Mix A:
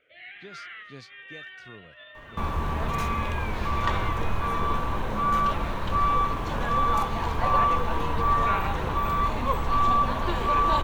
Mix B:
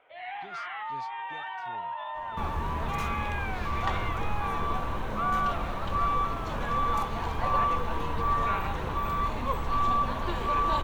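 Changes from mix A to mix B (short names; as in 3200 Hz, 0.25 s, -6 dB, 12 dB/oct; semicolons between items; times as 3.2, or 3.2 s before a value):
speech -5.0 dB; first sound: remove Butterworth band-stop 890 Hz, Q 0.85; second sound -4.0 dB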